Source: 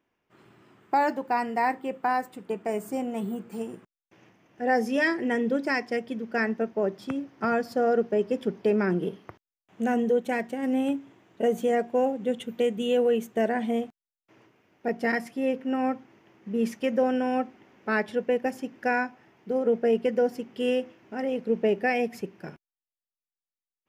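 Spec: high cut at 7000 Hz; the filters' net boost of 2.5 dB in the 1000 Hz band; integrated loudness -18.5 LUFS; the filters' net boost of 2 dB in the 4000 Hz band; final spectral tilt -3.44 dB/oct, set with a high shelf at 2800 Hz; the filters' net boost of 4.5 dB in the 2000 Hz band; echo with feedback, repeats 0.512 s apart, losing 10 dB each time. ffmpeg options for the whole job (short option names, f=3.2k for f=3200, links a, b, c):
-af "lowpass=7k,equalizer=f=1k:t=o:g=3,equalizer=f=2k:t=o:g=5.5,highshelf=f=2.8k:g=-6,equalizer=f=4k:t=o:g=5.5,aecho=1:1:512|1024|1536|2048:0.316|0.101|0.0324|0.0104,volume=7.5dB"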